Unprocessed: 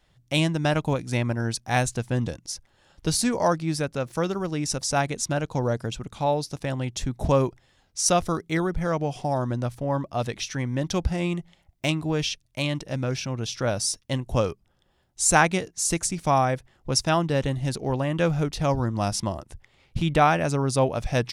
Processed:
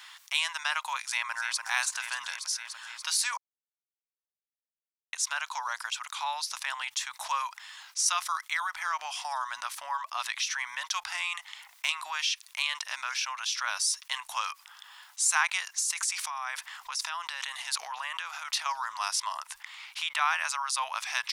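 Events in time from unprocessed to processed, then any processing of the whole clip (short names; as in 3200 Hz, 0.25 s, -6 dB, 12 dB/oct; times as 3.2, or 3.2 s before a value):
1.02–1.59 echo throw 0.29 s, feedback 65%, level -10.5 dB
3.37–5.13 mute
15.74–18.66 negative-ratio compressor -31 dBFS
whole clip: elliptic high-pass 990 Hz, stop band 60 dB; fast leveller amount 50%; gain -4.5 dB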